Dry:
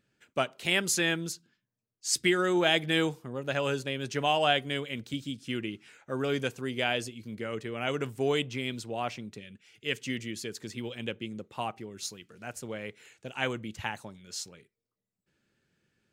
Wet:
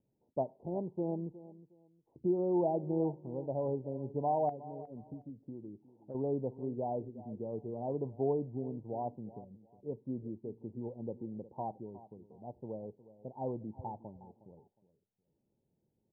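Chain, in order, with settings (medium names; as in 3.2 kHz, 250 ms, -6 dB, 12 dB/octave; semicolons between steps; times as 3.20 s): steep low-pass 940 Hz 96 dB/octave; 4.49–6.15 s: compression 6:1, threshold -39 dBFS, peak gain reduction 14 dB; on a send: feedback delay 362 ms, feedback 23%, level -17 dB; on the sum: trim -3.5 dB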